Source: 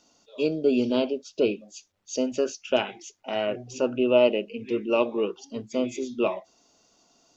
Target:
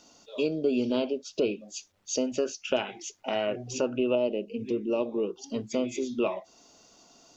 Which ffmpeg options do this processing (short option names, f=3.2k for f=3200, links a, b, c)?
-filter_complex "[0:a]asettb=1/sr,asplit=3[a][b][c];[a]atrim=end=4.154[d];[b]atrim=start=4.15:end=5.44,asetpts=PTS-STARTPTS,afade=t=in:d=0.004:c=qsin,afade=t=out:st=1.286:d=0.004:c=qsin,equalizer=f=1.8k:w=0.67:g=-13[e];[c]atrim=start=5.436[f];[d][e]acrossfade=d=0.004:c1=hsin:c2=qsin[g];[g][f]acrossfade=d=0.004:c1=qsin:c2=hsin,acompressor=threshold=-36dB:ratio=2,volume=5.5dB"